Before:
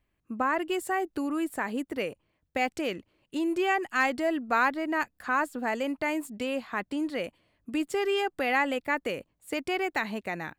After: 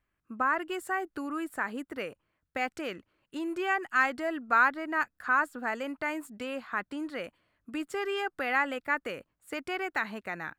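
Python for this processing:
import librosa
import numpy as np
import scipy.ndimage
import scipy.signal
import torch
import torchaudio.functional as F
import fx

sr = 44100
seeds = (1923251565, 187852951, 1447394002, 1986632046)

y = fx.peak_eq(x, sr, hz=1400.0, db=10.5, octaves=0.8)
y = F.gain(torch.from_numpy(y), -6.0).numpy()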